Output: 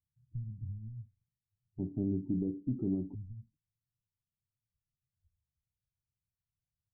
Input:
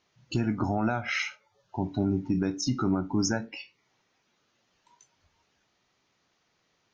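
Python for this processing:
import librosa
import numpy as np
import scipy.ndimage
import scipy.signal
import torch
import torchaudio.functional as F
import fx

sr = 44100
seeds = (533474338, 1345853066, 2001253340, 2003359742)

y = 10.0 ** (-18.0 / 20.0) * np.tanh(x / 10.0 ** (-18.0 / 20.0))
y = fx.cheby2_lowpass(y, sr, hz=fx.steps((0.0, 570.0), (1.78, 2000.0), (3.13, 520.0)), order=4, stop_db=70)
y = y * 10.0 ** (-4.5 / 20.0)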